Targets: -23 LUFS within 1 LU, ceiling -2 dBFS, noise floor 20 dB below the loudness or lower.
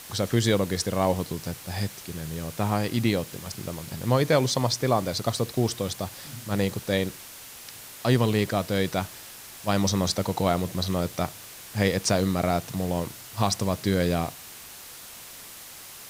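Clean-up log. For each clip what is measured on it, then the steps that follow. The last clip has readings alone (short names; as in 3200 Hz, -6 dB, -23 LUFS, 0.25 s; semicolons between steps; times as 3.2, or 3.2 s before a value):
noise floor -44 dBFS; noise floor target -47 dBFS; loudness -26.5 LUFS; peak -8.5 dBFS; loudness target -23.0 LUFS
-> noise print and reduce 6 dB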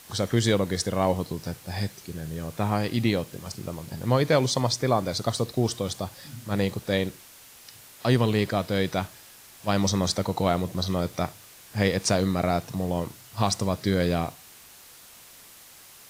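noise floor -50 dBFS; loudness -26.5 LUFS; peak -8.5 dBFS; loudness target -23.0 LUFS
-> gain +3.5 dB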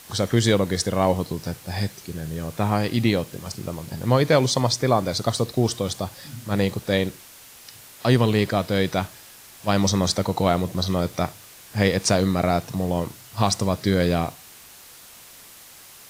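loudness -23.0 LUFS; peak -5.0 dBFS; noise floor -46 dBFS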